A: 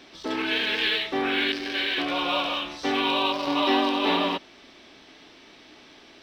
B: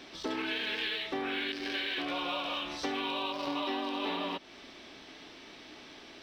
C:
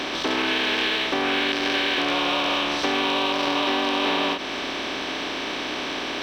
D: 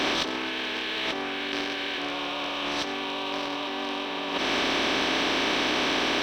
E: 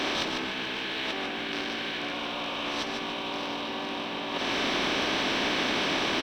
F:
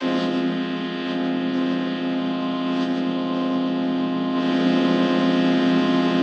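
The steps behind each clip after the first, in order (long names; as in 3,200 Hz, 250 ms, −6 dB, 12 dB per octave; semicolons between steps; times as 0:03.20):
downward compressor 6 to 1, threshold −32 dBFS, peak gain reduction 13 dB
compressor on every frequency bin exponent 0.4; every ending faded ahead of time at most 140 dB per second; level +6.5 dB
compressor whose output falls as the input rises −29 dBFS, ratio −1
echo with shifted repeats 149 ms, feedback 37%, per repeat −59 Hz, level −5 dB; level −3.5 dB
channel vocoder with a chord as carrier minor triad, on F3; rectangular room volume 160 cubic metres, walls furnished, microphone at 2.8 metres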